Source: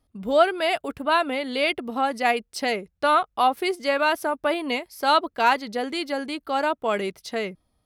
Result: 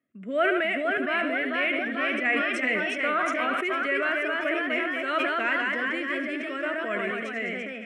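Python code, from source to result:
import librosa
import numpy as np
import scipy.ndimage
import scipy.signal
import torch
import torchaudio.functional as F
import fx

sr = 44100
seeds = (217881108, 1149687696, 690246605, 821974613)

p1 = fx.echo_pitch(x, sr, ms=498, semitones=1, count=3, db_per_echo=-3.0)
p2 = fx.cabinet(p1, sr, low_hz=190.0, low_slope=24, high_hz=7100.0, hz=(460.0, 660.0, 1000.0, 1900.0, 3700.0, 6400.0), db=(-4, 7, -3, 7, -10, -7))
p3 = fx.fixed_phaser(p2, sr, hz=2000.0, stages=4)
p4 = p3 + fx.echo_thinned(p3, sr, ms=73, feedback_pct=54, hz=370.0, wet_db=-13.0, dry=0)
p5 = fx.sustainer(p4, sr, db_per_s=23.0)
y = p5 * 10.0 ** (-3.5 / 20.0)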